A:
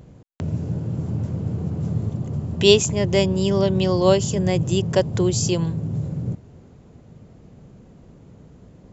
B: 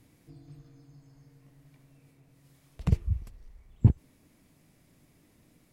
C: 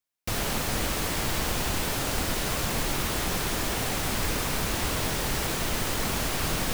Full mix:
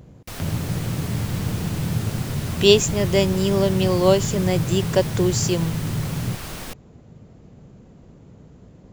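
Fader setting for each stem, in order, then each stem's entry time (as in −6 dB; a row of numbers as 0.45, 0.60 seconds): 0.0, −10.0, −6.0 decibels; 0.00, 0.00, 0.00 seconds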